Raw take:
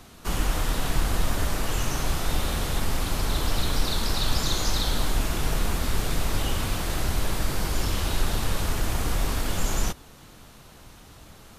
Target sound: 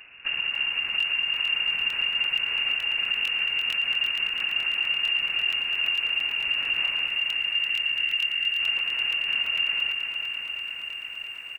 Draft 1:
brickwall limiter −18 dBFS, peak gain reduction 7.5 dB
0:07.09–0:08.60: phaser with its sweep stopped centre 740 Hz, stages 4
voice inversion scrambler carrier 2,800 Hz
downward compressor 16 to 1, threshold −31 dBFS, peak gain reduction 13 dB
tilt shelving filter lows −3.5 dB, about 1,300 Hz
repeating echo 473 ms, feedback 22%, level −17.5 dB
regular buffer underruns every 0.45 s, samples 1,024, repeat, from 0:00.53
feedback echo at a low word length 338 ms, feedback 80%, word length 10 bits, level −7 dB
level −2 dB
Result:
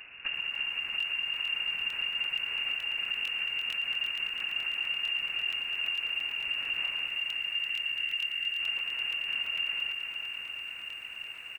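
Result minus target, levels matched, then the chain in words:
downward compressor: peak gain reduction +6.5 dB
brickwall limiter −18 dBFS, peak gain reduction 7.5 dB
0:07.09–0:08.60: phaser with its sweep stopped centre 740 Hz, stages 4
voice inversion scrambler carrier 2,800 Hz
downward compressor 16 to 1, threshold −24 dBFS, peak gain reduction 6 dB
tilt shelving filter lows −3.5 dB, about 1,300 Hz
repeating echo 473 ms, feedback 22%, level −17.5 dB
regular buffer underruns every 0.45 s, samples 1,024, repeat, from 0:00.53
feedback echo at a low word length 338 ms, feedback 80%, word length 10 bits, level −7 dB
level −2 dB

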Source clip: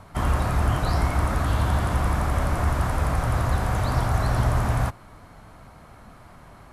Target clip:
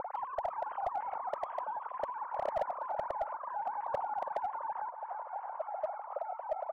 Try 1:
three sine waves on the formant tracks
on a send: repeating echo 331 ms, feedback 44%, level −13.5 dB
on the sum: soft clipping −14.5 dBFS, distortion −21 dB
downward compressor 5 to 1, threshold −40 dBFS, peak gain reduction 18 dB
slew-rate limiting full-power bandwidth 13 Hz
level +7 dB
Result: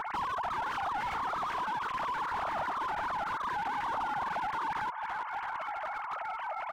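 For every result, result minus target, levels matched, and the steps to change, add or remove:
500 Hz band −9.5 dB; soft clipping: distortion +10 dB
add after downward compressor: low-pass with resonance 550 Hz, resonance Q 4.8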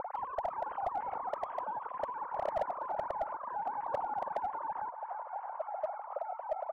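soft clipping: distortion +10 dB
change: soft clipping −8.5 dBFS, distortion −32 dB

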